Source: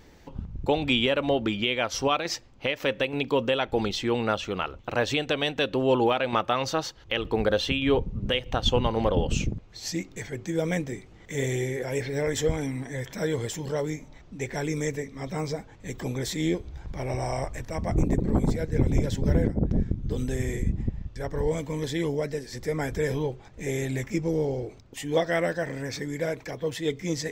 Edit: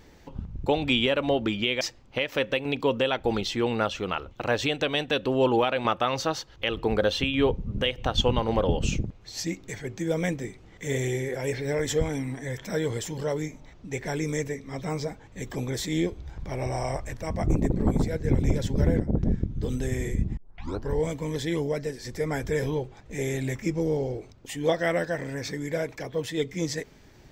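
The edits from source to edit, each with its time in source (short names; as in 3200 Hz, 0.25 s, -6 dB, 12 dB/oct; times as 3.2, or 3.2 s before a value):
1.81–2.29 cut
20.85 tape start 0.53 s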